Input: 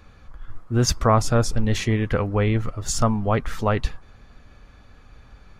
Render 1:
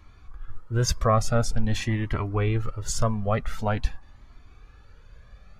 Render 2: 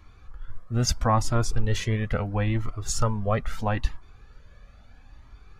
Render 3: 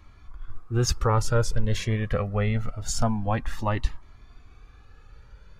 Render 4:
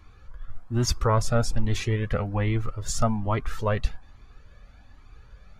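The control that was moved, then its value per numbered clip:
Shepard-style flanger, rate: 0.47 Hz, 0.76 Hz, 0.25 Hz, 1.2 Hz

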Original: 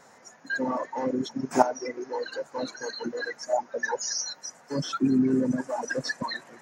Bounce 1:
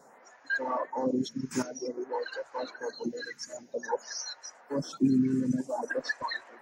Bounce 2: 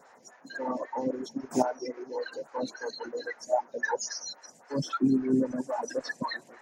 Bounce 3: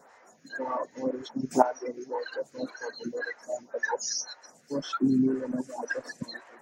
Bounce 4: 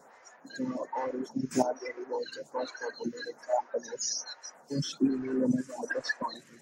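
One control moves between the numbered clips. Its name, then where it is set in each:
lamp-driven phase shifter, rate: 0.52 Hz, 3.7 Hz, 1.9 Hz, 1.2 Hz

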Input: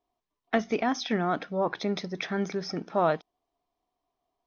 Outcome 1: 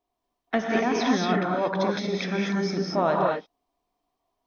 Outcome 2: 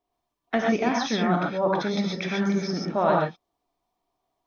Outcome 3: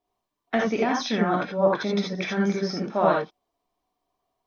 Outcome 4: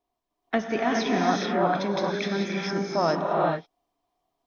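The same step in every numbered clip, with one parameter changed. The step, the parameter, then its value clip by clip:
gated-style reverb, gate: 260 ms, 160 ms, 100 ms, 460 ms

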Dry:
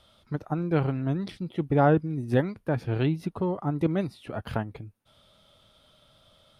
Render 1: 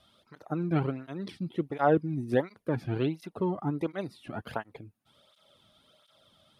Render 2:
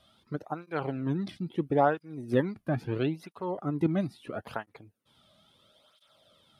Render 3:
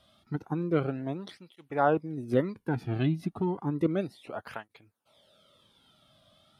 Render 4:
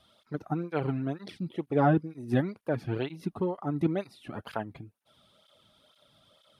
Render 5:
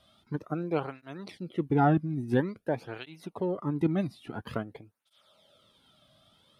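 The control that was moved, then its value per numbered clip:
cancelling through-zero flanger, nulls at: 1.4 Hz, 0.75 Hz, 0.32 Hz, 2.1 Hz, 0.49 Hz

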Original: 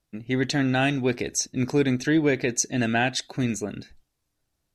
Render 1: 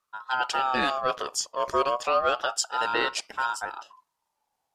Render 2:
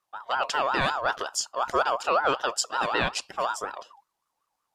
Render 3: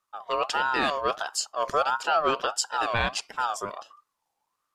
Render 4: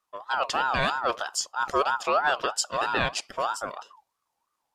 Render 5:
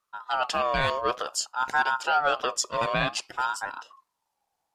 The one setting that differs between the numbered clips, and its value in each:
ring modulator with a swept carrier, at: 0.31 Hz, 5.4 Hz, 1.5 Hz, 3.1 Hz, 0.55 Hz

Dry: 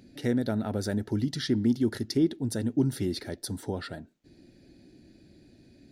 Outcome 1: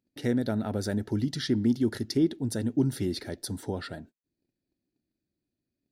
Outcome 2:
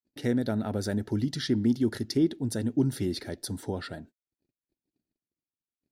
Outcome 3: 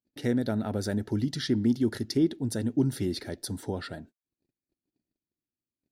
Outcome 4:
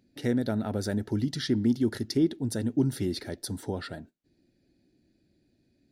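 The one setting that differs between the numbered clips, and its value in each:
gate, range: -30 dB, -58 dB, -42 dB, -13 dB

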